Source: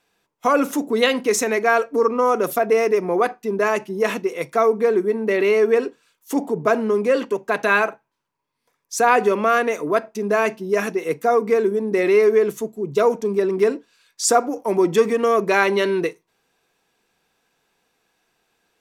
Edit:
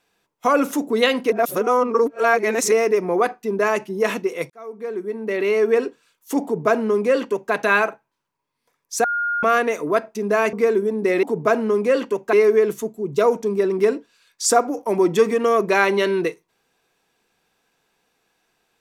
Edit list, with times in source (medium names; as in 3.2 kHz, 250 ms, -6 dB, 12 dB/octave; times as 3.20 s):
1.30–2.72 s: reverse
4.50–5.81 s: fade in
6.43–7.53 s: copy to 12.12 s
9.04–9.43 s: bleep 1.42 kHz -19.5 dBFS
10.53–11.42 s: delete